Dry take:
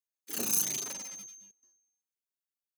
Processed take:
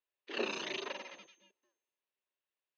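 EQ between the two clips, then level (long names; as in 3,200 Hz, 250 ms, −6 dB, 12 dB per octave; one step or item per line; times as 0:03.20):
high-frequency loss of the air 150 metres
loudspeaker in its box 320–4,400 Hz, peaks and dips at 380 Hz +9 dB, 570 Hz +8 dB, 1,000 Hz +7 dB, 1,800 Hz +6 dB, 2,700 Hz +9 dB, 3,800 Hz +5 dB
+1.0 dB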